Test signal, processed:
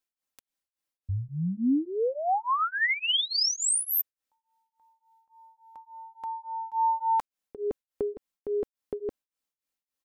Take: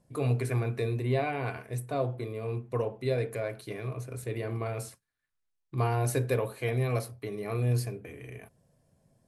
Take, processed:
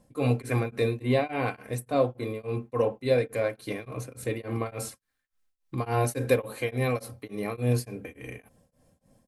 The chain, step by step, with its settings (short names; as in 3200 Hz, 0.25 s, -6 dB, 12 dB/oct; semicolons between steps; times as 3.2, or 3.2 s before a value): comb 3.8 ms, depth 47%; beating tremolo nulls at 3.5 Hz; gain +6.5 dB